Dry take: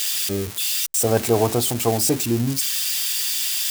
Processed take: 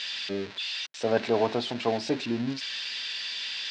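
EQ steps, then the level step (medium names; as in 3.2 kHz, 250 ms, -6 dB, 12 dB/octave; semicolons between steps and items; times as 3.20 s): distance through air 72 m; cabinet simulation 310–4100 Hz, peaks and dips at 340 Hz -8 dB, 480 Hz -6 dB, 770 Hz -7 dB, 1.2 kHz -8 dB, 2.2 kHz -3 dB, 3.1 kHz -4 dB; +1.5 dB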